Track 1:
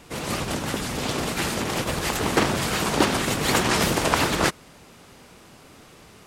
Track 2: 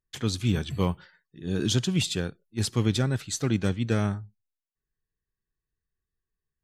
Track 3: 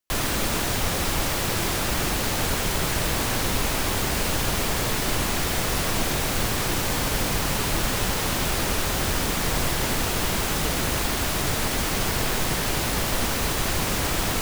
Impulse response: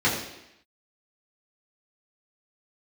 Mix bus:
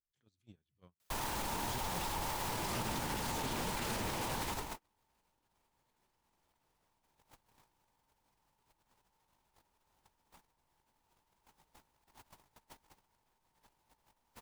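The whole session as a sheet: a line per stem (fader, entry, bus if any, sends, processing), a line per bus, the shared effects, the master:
−7.0 dB, 2.40 s, bus A, no send, every ending faded ahead of time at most 350 dB per second
−14.0 dB, 0.00 s, no bus, no send, background raised ahead of every attack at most 120 dB per second
0.0 dB, 1.00 s, bus A, no send, parametric band 900 Hz +14.5 dB 0.37 octaves; hum removal 87.67 Hz, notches 3; bit-depth reduction 6 bits, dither triangular; automatic ducking −11 dB, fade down 1.20 s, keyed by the second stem
bus A: 0.0 dB, compressor whose output falls as the input rises −30 dBFS, ratio −0.5; brickwall limiter −20.5 dBFS, peak gain reduction 10 dB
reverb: not used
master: noise gate −32 dBFS, range −39 dB; downward compressor 1.5 to 1, threshold −50 dBFS, peak gain reduction 9 dB

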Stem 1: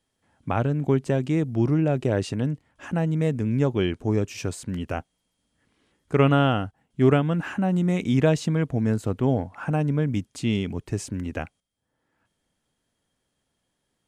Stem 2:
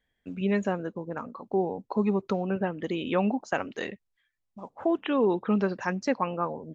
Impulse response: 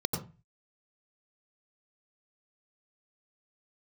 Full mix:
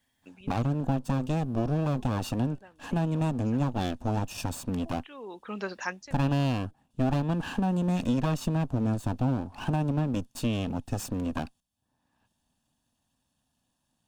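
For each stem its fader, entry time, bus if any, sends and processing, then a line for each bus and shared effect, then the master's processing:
+1.0 dB, 0.00 s, no send, lower of the sound and its delayed copy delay 1.1 ms; thirty-one-band graphic EQ 250 Hz +7 dB, 400 Hz −4 dB, 2,000 Hz −12 dB
−2.5 dB, 0.00 s, no send, spectral tilt +3.5 dB per octave; automatic ducking −18 dB, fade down 0.20 s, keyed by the first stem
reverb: not used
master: downward compressor 3 to 1, threshold −25 dBFS, peak gain reduction 9 dB

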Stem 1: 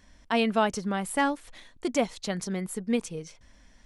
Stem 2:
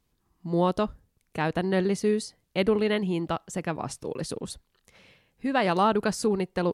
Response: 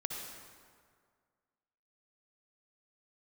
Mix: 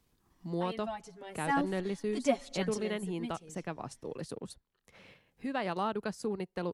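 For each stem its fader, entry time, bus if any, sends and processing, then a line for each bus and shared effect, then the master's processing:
0:01.16 −15.5 dB → 0:01.59 −4.5 dB → 0:02.76 −4.5 dB → 0:03.00 −12.5 dB, 0.30 s, send −22.5 dB, comb filter 7.3 ms, depth 58%; barber-pole flanger 5.1 ms −2 Hz
−9.5 dB, 0.00 s, no send, transient designer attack −1 dB, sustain −7 dB; multiband upward and downward compressor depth 40%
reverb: on, RT60 1.9 s, pre-delay 53 ms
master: no processing

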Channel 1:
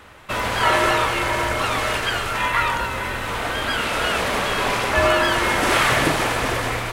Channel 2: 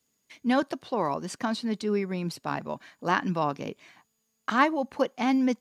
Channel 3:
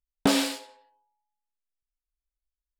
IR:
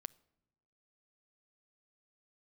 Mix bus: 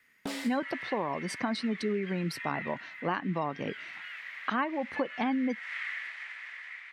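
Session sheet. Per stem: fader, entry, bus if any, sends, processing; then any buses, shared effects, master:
−12.5 dB, 0.00 s, no send, four-pole ladder band-pass 2,100 Hz, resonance 75%
+1.0 dB, 0.00 s, no send, gate on every frequency bin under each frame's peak −30 dB strong; parametric band 7,000 Hz −12 dB 0.22 octaves
−15.0 dB, 0.00 s, no send, no processing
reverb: not used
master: downward compressor 6 to 1, threshold −27 dBFS, peak gain reduction 11.5 dB

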